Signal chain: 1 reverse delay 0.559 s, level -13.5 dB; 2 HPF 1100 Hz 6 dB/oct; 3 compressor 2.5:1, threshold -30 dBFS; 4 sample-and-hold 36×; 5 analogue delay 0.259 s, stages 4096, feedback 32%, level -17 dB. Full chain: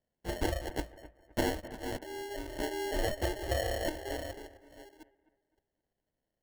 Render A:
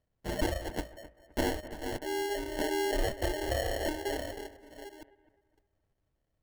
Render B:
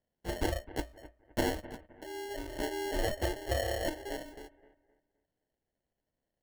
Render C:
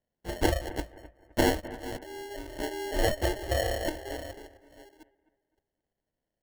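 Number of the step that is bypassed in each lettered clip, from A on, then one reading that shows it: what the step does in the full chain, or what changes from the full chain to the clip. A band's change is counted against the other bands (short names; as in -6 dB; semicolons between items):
2, 125 Hz band -2.5 dB; 1, momentary loudness spread change -4 LU; 3, mean gain reduction 1.5 dB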